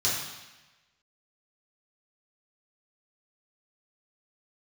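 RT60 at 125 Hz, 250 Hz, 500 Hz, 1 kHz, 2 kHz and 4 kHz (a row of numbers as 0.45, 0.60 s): 1.2, 1.1, 1.1, 1.1, 1.2, 1.1 s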